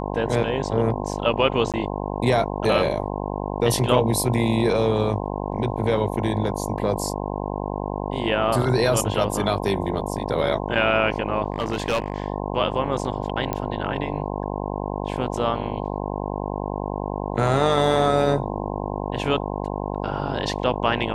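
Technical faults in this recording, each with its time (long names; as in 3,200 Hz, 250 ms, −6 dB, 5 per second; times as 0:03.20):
mains buzz 50 Hz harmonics 21 −28 dBFS
0:01.72–0:01.74: drop-out 17 ms
0:11.52–0:12.26: clipping −18 dBFS
0:13.53: click −12 dBFS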